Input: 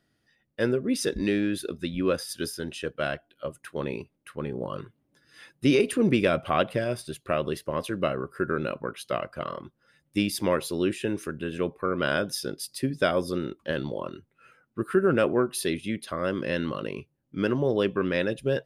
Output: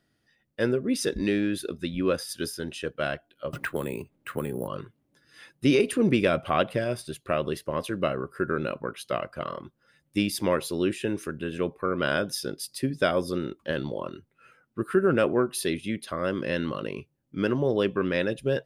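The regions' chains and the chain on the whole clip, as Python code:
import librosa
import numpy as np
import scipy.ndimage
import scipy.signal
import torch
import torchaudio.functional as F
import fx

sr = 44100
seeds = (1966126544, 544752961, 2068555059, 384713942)

y = fx.chain(x, sr, fx.resample_bad(factor=4, down='filtered', up='hold'),
    fx.band_squash(depth_pct=100), at=(3.53, 4.68))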